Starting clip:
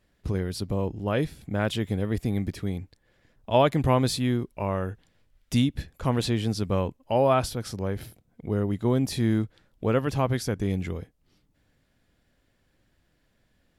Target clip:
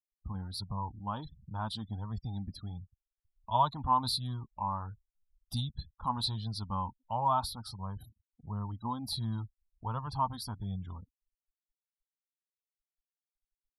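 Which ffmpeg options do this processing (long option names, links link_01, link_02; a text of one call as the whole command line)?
ffmpeg -i in.wav -af "flanger=delay=1.7:depth=2.1:regen=-43:speed=1.4:shape=sinusoidal,afftfilt=real='re*gte(hypot(re,im),0.00562)':imag='im*gte(hypot(re,im),0.00562)':win_size=1024:overlap=0.75,firequalizer=gain_entry='entry(110,0);entry(220,-2);entry(360,-18);entry(530,-16);entry(910,14);entry(2100,-27);entry(4000,13);entry(6600,-13);entry(9700,6)':delay=0.05:min_phase=1,volume=-5dB" out.wav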